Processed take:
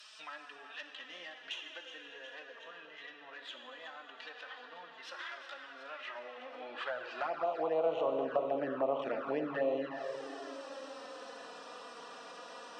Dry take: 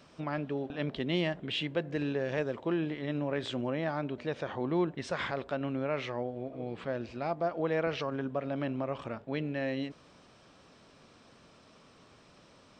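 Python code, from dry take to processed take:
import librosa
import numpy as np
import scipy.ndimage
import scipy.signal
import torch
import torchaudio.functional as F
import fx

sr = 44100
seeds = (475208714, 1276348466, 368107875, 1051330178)

p1 = fx.tracing_dist(x, sr, depth_ms=0.099)
p2 = fx.notch(p1, sr, hz=2200.0, q=5.5)
p3 = fx.env_lowpass_down(p2, sr, base_hz=1200.0, full_db=-30.0)
p4 = fx.rider(p3, sr, range_db=10, speed_s=0.5)
p5 = p3 + F.gain(torch.from_numpy(p4), -0.5).numpy()
p6 = fx.filter_sweep_highpass(p5, sr, from_hz=3300.0, to_hz=580.0, start_s=5.7, end_s=8.0, q=0.9)
p7 = fx.echo_thinned(p6, sr, ms=365, feedback_pct=61, hz=210.0, wet_db=-14)
p8 = fx.rev_plate(p7, sr, seeds[0], rt60_s=2.9, hf_ratio=0.8, predelay_ms=0, drr_db=4.0)
p9 = fx.env_flanger(p8, sr, rest_ms=5.1, full_db=-27.5)
p10 = fx.band_squash(p9, sr, depth_pct=40)
y = F.gain(torch.from_numpy(p10), 2.5).numpy()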